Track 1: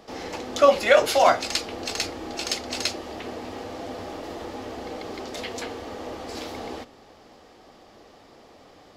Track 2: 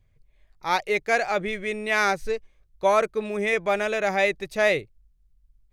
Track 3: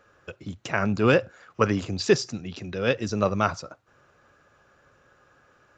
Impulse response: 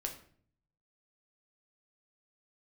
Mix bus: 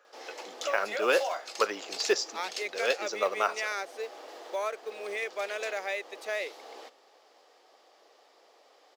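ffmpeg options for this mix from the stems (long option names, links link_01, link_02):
-filter_complex "[0:a]adelay=50,volume=-8.5dB[link_01];[1:a]equalizer=frequency=840:width_type=o:width=0.54:gain=-4,adelay=1700,volume=-5.5dB[link_02];[2:a]volume=-3.5dB[link_03];[link_01][link_02]amix=inputs=2:normalize=0,alimiter=limit=-23dB:level=0:latency=1:release=461,volume=0dB[link_04];[link_03][link_04]amix=inputs=2:normalize=0,highpass=frequency=420:width=0.5412,highpass=frequency=420:width=1.3066,equalizer=frequency=5500:width_type=o:width=1.6:gain=2.5,acrusher=bits=8:mode=log:mix=0:aa=0.000001"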